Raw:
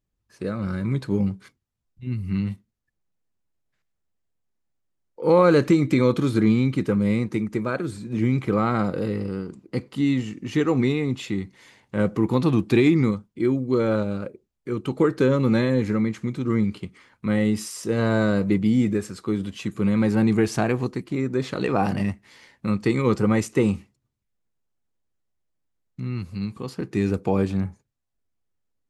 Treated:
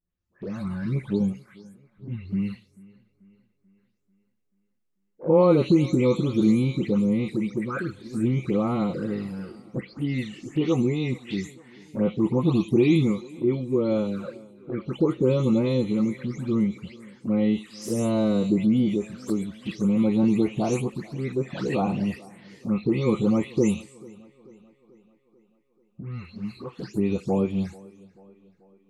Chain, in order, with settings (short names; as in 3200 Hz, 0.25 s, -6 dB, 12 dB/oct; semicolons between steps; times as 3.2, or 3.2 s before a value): spectral delay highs late, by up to 0.258 s; envelope flanger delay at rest 11.4 ms, full sweep at -21 dBFS; on a send: tape echo 0.438 s, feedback 58%, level -21.5 dB, low-pass 4600 Hz